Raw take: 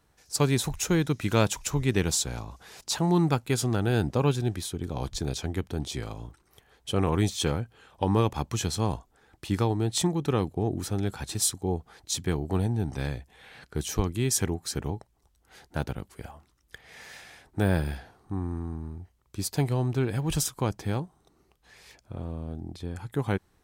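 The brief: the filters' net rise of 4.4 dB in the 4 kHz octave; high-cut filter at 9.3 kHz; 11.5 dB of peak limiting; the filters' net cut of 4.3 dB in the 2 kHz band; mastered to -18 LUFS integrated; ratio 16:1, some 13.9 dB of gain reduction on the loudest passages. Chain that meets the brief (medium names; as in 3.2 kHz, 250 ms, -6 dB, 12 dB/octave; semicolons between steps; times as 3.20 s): low-pass 9.3 kHz; peaking EQ 2 kHz -8 dB; peaking EQ 4 kHz +7.5 dB; compression 16:1, threshold -32 dBFS; trim +22.5 dB; peak limiter -6.5 dBFS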